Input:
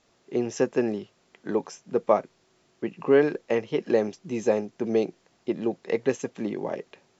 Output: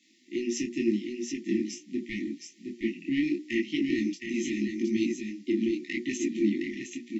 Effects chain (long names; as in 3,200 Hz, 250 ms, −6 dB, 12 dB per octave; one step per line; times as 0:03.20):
Butterworth high-pass 220 Hz 36 dB per octave
high-shelf EQ 4,500 Hz −4.5 dB
mains-hum notches 60/120/180/240/300/360/420 Hz
in parallel at 0 dB: brickwall limiter −17 dBFS, peak gain reduction 10 dB
on the sum: soft clipping −11.5 dBFS, distortion −17 dB
linear-phase brick-wall band-stop 360–1,800 Hz
on a send: single-tap delay 715 ms −5.5 dB
on the sum: micro pitch shift up and down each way 28 cents
level +4 dB